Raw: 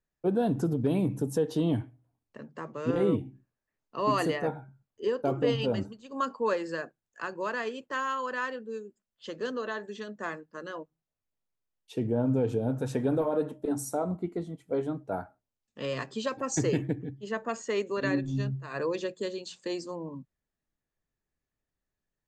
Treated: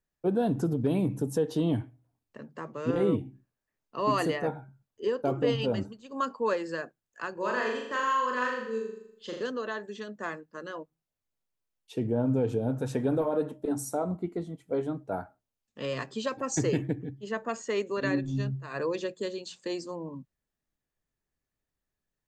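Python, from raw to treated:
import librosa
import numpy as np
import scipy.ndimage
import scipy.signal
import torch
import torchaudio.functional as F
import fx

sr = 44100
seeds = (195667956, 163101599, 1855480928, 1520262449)

y = fx.room_flutter(x, sr, wall_m=6.9, rt60_s=0.76, at=(7.33, 9.43))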